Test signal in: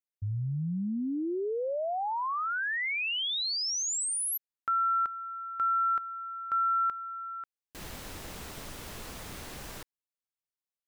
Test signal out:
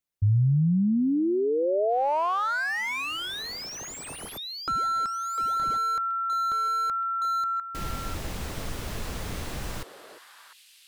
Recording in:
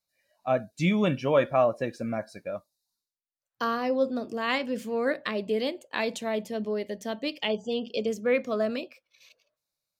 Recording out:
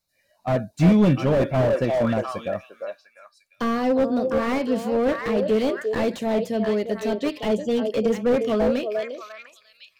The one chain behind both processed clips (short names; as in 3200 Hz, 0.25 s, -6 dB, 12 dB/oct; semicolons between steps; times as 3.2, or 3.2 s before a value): low shelf 180 Hz +8 dB; delay with a stepping band-pass 0.35 s, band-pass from 520 Hz, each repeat 1.4 oct, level -4 dB; slew limiter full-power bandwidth 38 Hz; gain +5.5 dB